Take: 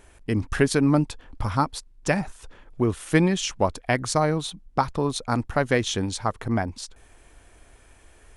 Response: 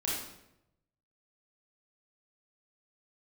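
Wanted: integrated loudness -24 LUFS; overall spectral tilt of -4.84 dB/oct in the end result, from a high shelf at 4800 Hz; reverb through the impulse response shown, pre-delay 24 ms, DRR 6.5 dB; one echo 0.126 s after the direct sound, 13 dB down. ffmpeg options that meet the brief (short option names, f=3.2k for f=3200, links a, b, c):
-filter_complex "[0:a]highshelf=f=4.8k:g=4,aecho=1:1:126:0.224,asplit=2[a][b];[1:a]atrim=start_sample=2205,adelay=24[c];[b][c]afir=irnorm=-1:irlink=0,volume=-12dB[d];[a][d]amix=inputs=2:normalize=0,volume=-0.5dB"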